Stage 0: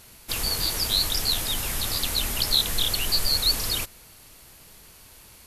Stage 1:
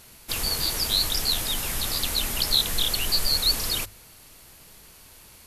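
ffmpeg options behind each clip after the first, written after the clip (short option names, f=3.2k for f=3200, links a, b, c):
-af "bandreject=f=50:t=h:w=6,bandreject=f=100:t=h:w=6"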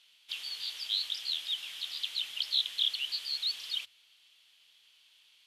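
-af "bandpass=f=3.2k:t=q:w=5.2:csg=0"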